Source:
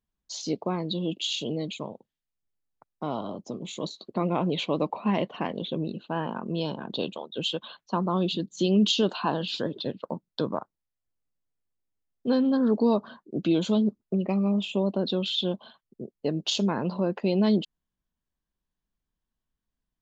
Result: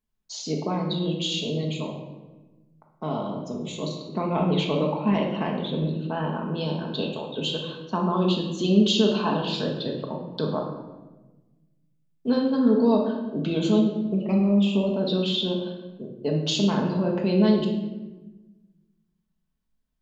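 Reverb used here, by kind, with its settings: shoebox room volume 690 m³, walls mixed, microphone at 1.5 m; gain -1 dB

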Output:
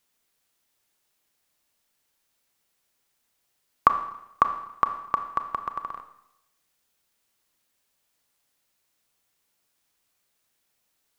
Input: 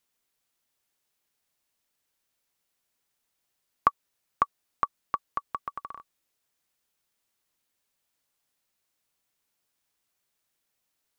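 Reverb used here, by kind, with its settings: Schroeder reverb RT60 0.84 s, combs from 27 ms, DRR 8.5 dB; gain +4.5 dB

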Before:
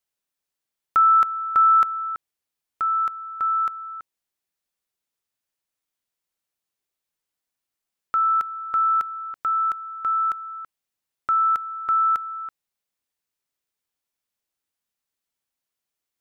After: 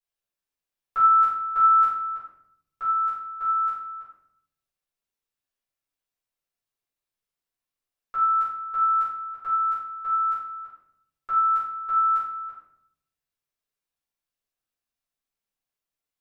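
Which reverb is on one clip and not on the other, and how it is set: shoebox room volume 150 m³, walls mixed, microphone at 4.2 m; gain -17 dB

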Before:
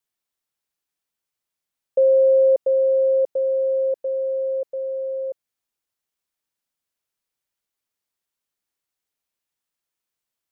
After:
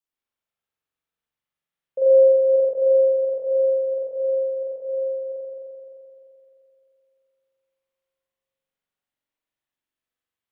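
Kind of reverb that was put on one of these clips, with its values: spring tank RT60 2.9 s, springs 43 ms, chirp 75 ms, DRR -9.5 dB; gain -10 dB

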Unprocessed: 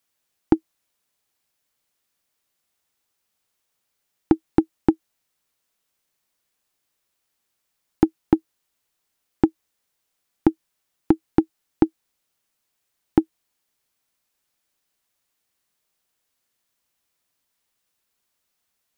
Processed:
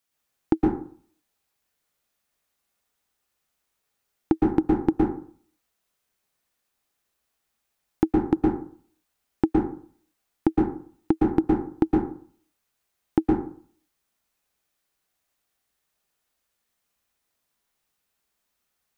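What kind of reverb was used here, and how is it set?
plate-style reverb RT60 0.51 s, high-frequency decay 0.45×, pre-delay 0.105 s, DRR -3 dB; gain -4.5 dB

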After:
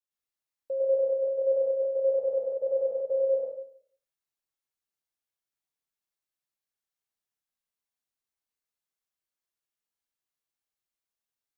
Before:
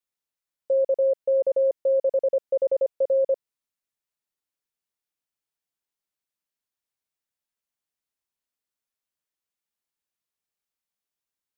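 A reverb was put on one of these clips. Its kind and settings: plate-style reverb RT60 0.57 s, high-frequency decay 0.9×, pre-delay 90 ms, DRR -5.5 dB; gain -9.5 dB

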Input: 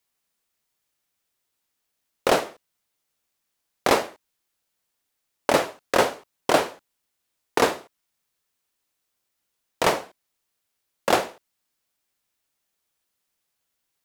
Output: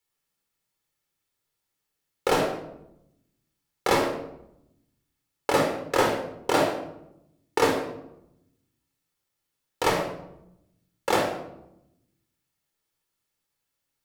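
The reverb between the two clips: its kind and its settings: shoebox room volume 2300 m³, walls furnished, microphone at 4.2 m; gain -6 dB

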